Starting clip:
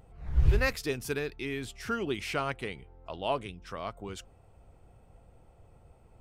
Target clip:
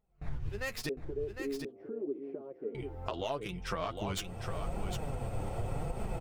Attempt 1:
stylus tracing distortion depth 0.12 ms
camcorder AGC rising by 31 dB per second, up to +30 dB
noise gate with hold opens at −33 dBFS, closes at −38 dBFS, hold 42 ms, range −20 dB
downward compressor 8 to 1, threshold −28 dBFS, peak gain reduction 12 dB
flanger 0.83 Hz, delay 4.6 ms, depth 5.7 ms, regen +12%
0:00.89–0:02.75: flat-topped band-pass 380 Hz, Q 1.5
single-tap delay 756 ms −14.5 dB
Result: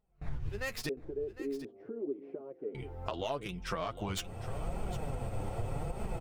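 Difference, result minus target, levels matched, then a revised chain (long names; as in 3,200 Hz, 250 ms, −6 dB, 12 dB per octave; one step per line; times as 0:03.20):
echo-to-direct −7.5 dB
stylus tracing distortion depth 0.12 ms
camcorder AGC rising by 31 dB per second, up to +30 dB
noise gate with hold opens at −33 dBFS, closes at −38 dBFS, hold 42 ms, range −20 dB
downward compressor 8 to 1, threshold −28 dBFS, peak gain reduction 12 dB
flanger 0.83 Hz, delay 4.6 ms, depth 5.7 ms, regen +12%
0:00.89–0:02.75: flat-topped band-pass 380 Hz, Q 1.5
single-tap delay 756 ms −7 dB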